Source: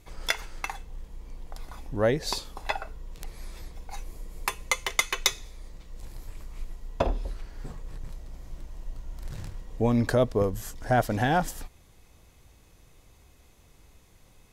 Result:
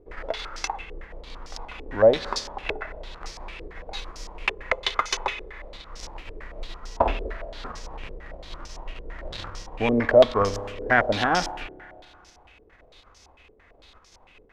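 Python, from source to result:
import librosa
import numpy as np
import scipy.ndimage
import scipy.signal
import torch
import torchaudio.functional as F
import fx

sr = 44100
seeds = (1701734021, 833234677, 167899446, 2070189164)

y = fx.envelope_flatten(x, sr, power=0.6)
y = fx.peak_eq(y, sr, hz=140.0, db=-15.0, octaves=0.34)
y = fx.rev_spring(y, sr, rt60_s=2.2, pass_ms=(30,), chirp_ms=75, drr_db=13.0)
y = fx.filter_held_lowpass(y, sr, hz=8.9, low_hz=430.0, high_hz=5500.0)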